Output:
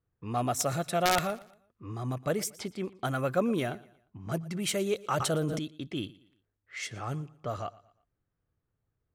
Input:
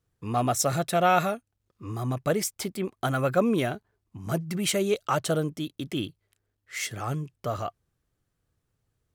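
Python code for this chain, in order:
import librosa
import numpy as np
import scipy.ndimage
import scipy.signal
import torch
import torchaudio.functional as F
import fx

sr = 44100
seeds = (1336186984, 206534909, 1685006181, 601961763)

y = (np.mod(10.0 ** (11.0 / 20.0) * x + 1.0, 2.0) - 1.0) / 10.0 ** (11.0 / 20.0)
y = fx.env_lowpass(y, sr, base_hz=2000.0, full_db=-24.0)
y = fx.echo_feedback(y, sr, ms=117, feedback_pct=38, wet_db=-21)
y = fx.sustainer(y, sr, db_per_s=21.0, at=(5.11, 5.59))
y = y * 10.0 ** (-4.5 / 20.0)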